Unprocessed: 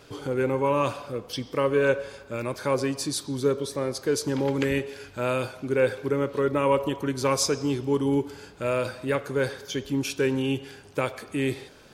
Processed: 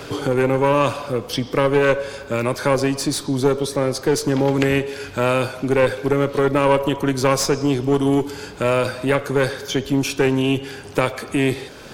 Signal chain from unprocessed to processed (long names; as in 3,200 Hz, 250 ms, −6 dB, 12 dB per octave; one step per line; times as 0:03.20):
one-sided soft clipper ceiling −24 dBFS
multiband upward and downward compressor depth 40%
level +8.5 dB